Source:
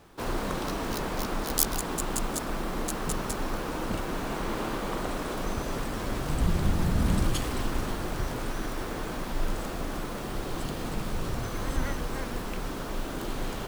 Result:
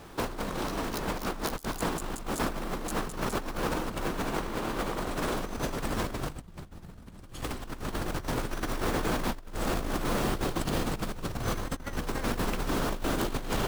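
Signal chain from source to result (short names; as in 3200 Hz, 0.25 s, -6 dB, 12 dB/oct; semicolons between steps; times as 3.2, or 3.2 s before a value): negative-ratio compressor -34 dBFS, ratio -0.5; gain +2.5 dB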